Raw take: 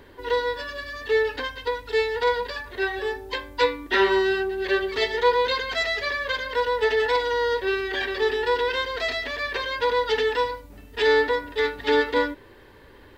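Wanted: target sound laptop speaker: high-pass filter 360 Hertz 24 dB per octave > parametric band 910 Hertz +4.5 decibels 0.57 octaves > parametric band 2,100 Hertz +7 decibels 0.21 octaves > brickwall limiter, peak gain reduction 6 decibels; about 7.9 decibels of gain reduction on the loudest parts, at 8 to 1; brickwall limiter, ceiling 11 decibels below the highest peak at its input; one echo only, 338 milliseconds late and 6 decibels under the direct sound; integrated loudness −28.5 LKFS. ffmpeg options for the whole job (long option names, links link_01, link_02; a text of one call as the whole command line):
ffmpeg -i in.wav -af "acompressor=threshold=-23dB:ratio=8,alimiter=limit=-24dB:level=0:latency=1,highpass=frequency=360:width=0.5412,highpass=frequency=360:width=1.3066,equalizer=frequency=910:width_type=o:width=0.57:gain=4.5,equalizer=frequency=2100:width_type=o:width=0.21:gain=7,aecho=1:1:338:0.501,volume=3.5dB,alimiter=limit=-20dB:level=0:latency=1" out.wav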